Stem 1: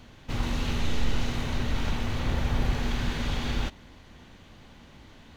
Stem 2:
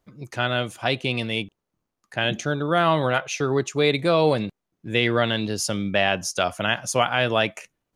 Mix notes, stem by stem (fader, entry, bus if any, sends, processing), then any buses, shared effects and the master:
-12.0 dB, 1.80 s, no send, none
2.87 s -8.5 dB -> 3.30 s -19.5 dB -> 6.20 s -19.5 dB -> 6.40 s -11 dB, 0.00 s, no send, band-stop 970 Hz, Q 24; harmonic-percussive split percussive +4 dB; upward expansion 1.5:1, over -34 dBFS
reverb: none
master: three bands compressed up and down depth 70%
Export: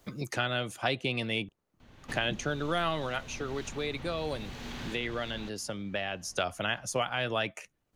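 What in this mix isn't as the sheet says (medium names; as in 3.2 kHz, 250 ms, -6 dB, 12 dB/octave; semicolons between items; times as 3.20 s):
stem 1 -12.0 dB -> -19.0 dB; stem 2: missing upward expansion 1.5:1, over -34 dBFS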